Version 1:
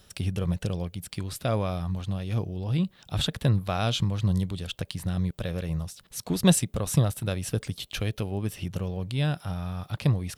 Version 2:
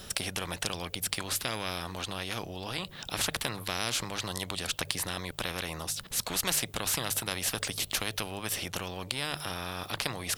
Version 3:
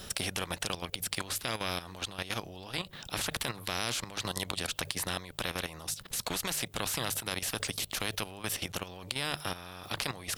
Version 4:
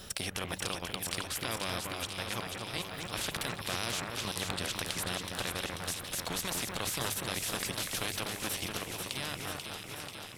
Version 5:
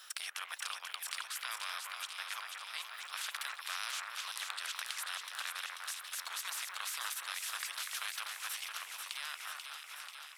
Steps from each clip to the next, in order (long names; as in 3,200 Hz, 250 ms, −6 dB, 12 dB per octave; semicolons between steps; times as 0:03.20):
mains-hum notches 50/100/150 Hz; every bin compressed towards the loudest bin 4 to 1
output level in coarse steps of 12 dB; level +2.5 dB
fade-out on the ending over 1.48 s; on a send: delay that swaps between a low-pass and a high-pass 244 ms, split 2,300 Hz, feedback 83%, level −3.5 dB; on the sum: level −2.5 dB
four-pole ladder high-pass 1,000 Hz, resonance 35%; level +2.5 dB